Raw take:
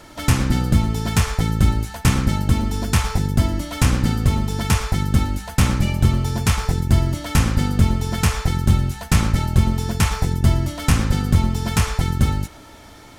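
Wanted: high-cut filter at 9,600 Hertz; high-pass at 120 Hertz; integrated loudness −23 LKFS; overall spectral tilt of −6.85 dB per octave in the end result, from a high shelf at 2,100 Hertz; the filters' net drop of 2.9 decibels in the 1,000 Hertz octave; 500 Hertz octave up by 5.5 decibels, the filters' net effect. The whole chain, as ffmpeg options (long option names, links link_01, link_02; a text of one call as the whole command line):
ffmpeg -i in.wav -af "highpass=120,lowpass=9600,equalizer=frequency=500:width_type=o:gain=8.5,equalizer=frequency=1000:width_type=o:gain=-4.5,highshelf=frequency=2100:gain=-7" out.wav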